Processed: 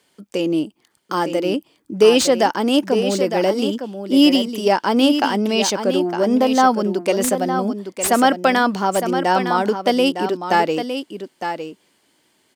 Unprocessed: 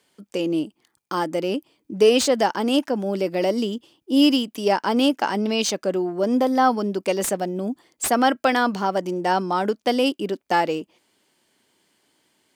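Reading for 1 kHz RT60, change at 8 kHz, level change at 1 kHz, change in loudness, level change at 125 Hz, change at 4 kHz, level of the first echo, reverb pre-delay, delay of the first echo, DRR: no reverb, +4.0 dB, +4.0 dB, +4.0 dB, +4.0 dB, +4.0 dB, -8.5 dB, no reverb, 909 ms, no reverb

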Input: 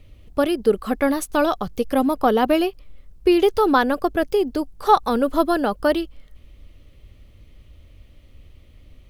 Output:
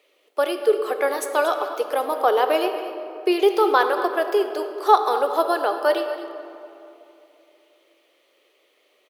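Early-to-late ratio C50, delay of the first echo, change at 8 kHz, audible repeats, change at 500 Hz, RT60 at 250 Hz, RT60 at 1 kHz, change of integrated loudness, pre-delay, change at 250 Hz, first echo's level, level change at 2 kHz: 7.5 dB, 233 ms, no reading, 1, 0.0 dB, 3.5 s, 2.7 s, -1.0 dB, 11 ms, -9.0 dB, -15.0 dB, +0.5 dB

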